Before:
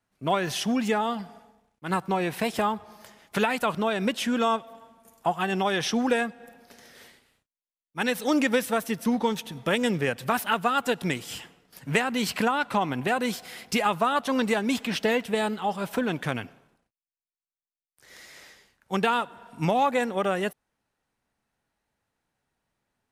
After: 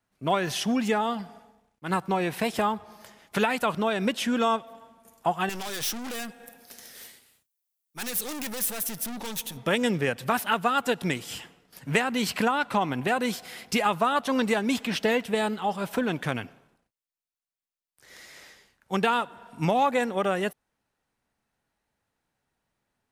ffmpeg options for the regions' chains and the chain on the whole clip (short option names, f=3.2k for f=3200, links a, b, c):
-filter_complex "[0:a]asettb=1/sr,asplit=3[a][b][c];[a]atrim=end=5.494[d];[b]atrim=start=5.49:end=9.57,asetpts=PTS-STARTPTS,afade=t=in:d=0.004:c=qsin,afade=t=out:st=4.076:d=0.004:c=qsin,highpass=46,aeval=exprs='(tanh(56.2*val(0)+0.5)-tanh(0.5))/56.2':c=same,aemphasis=mode=production:type=75kf[e];[c]atrim=start=9.566[f];[d][e]acrossfade=d=0.004:c1=hsin:c2=qsin[g];[g][f]acrossfade=d=0.004:c1=qsin:c2=hsin"